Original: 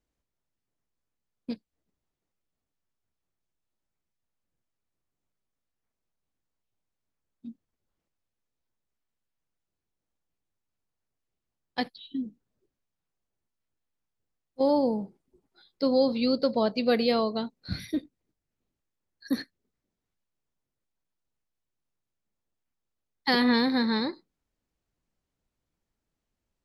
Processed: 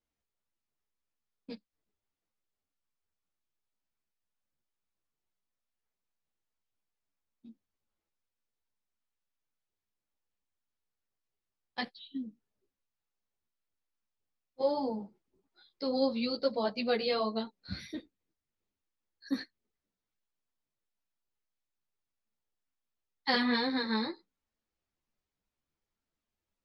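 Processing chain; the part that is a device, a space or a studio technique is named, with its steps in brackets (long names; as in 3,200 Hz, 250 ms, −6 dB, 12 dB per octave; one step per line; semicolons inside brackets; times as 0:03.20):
string-machine ensemble chorus (string-ensemble chorus; low-pass filter 6,500 Hz 12 dB per octave)
low-shelf EQ 480 Hz −6 dB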